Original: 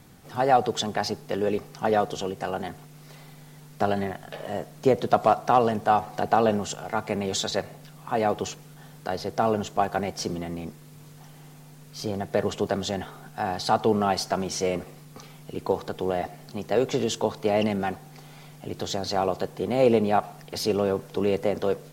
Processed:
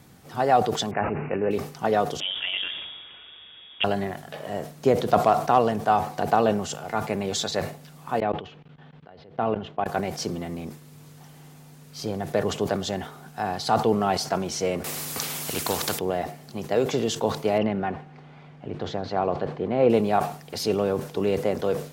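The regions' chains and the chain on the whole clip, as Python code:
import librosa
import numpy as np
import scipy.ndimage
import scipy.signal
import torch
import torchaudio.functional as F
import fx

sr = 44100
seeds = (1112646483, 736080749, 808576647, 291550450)

y = fx.chain(x, sr, fx.resample_bad(factor=8, down='none', up='filtered'),
    fx.sustainer(db_per_s=44.0), at=(0.91, 1.51))
y = fx.chain(y, sr, fx.cvsd(bps=32000),
    fx.freq_invert(carrier_hz=3500),
    fx.sustainer(db_per_s=34.0), at=(2.2, 3.84))
y = fx.chain(y, sr, fx.cheby1_lowpass(hz=3200.0, order=3),
    fx.level_steps(step_db=24), at=(8.2, 9.86))
y = fx.chain(y, sr, fx.high_shelf(hz=4800.0, db=10.5),
    fx.spectral_comp(ratio=2.0), at=(14.84, 15.99))
y = fx.chain(y, sr, fx.lowpass(hz=2300.0, slope=12),
    fx.echo_wet_highpass(ms=81, feedback_pct=75, hz=1700.0, wet_db=-21.5), at=(17.58, 19.9))
y = scipy.signal.sosfilt(scipy.signal.butter(2, 44.0, 'highpass', fs=sr, output='sos'), y)
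y = fx.sustainer(y, sr, db_per_s=120.0)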